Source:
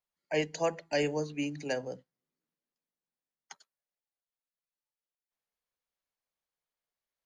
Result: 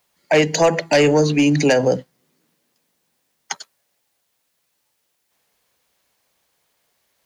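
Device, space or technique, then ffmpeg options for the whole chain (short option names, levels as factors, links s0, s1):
mastering chain: -af "highpass=55,equalizer=f=1300:t=o:w=0.44:g=-2.5,acompressor=threshold=0.0282:ratio=2,asoftclip=type=tanh:threshold=0.0501,asoftclip=type=hard:threshold=0.0376,alimiter=level_in=42.2:limit=0.891:release=50:level=0:latency=1,volume=0.422"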